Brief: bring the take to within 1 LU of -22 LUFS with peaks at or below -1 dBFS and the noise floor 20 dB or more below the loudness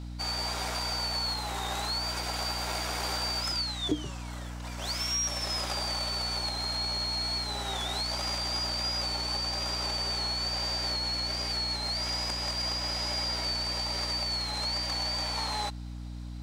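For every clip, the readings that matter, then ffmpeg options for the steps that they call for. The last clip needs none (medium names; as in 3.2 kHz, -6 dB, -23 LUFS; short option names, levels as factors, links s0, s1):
hum 60 Hz; highest harmonic 300 Hz; hum level -37 dBFS; loudness -30.0 LUFS; peak level -16.5 dBFS; loudness target -22.0 LUFS
-> -af "bandreject=f=60:t=h:w=4,bandreject=f=120:t=h:w=4,bandreject=f=180:t=h:w=4,bandreject=f=240:t=h:w=4,bandreject=f=300:t=h:w=4"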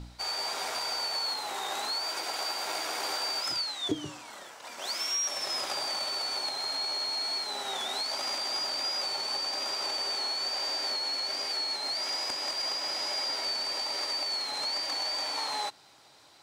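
hum not found; loudness -30.0 LUFS; peak level -17.5 dBFS; loudness target -22.0 LUFS
-> -af "volume=2.51"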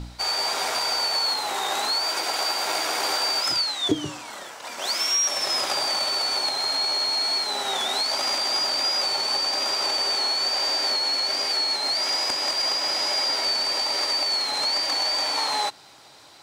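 loudness -22.0 LUFS; peak level -9.5 dBFS; noise floor -42 dBFS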